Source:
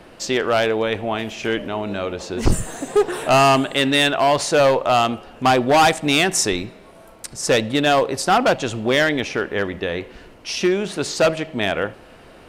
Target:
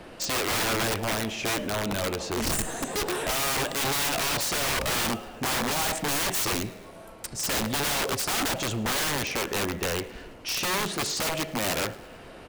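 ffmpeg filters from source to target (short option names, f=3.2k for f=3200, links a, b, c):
-filter_complex "[0:a]asettb=1/sr,asplit=3[a][b][c];[a]atrim=end=4.674[d];[b]atrim=start=4.67:end=5.11,asetpts=PTS-STARTPTS,afade=t=in:d=0.004:c=qsin,afade=t=out:st=0.436:d=0.004:c=qsin,aeval=exprs='val(0)+0.0251*(sin(2*PI*60*n/s)+sin(2*PI*2*60*n/s)/2+sin(2*PI*3*60*n/s)/3+sin(2*PI*4*60*n/s)/4+sin(2*PI*5*60*n/s)/5)':c=same[e];[c]atrim=start=5.106[f];[d][e]acrossfade=d=0.004:c1=hsin:c2=qsin[g];[g][f]acrossfade=d=0.004:c1=qsin:c2=hsin,aeval=exprs='(mod(8.41*val(0)+1,2)-1)/8.41':c=same,aeval=exprs='0.126*(cos(1*acos(clip(val(0)/0.126,-1,1)))-cos(1*PI/2))+0.00891*(cos(5*acos(clip(val(0)/0.126,-1,1)))-cos(5*PI/2))':c=same,aecho=1:1:108|216|324|432:0.075|0.0412|0.0227|0.0125,volume=-3dB"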